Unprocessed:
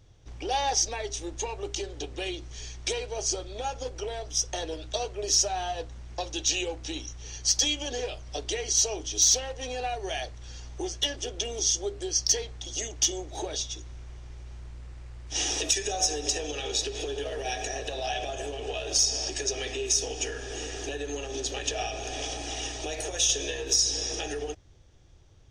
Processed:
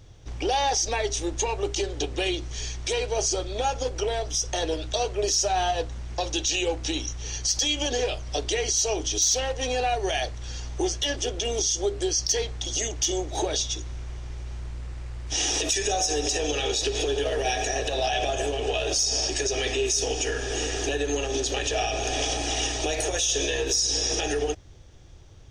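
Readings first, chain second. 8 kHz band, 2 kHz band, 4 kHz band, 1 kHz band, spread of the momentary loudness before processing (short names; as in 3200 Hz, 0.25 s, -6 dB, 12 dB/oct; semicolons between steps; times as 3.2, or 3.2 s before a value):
+1.0 dB, +6.0 dB, +2.5 dB, +5.5 dB, 14 LU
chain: limiter -23.5 dBFS, peak gain reduction 9 dB; gain +7.5 dB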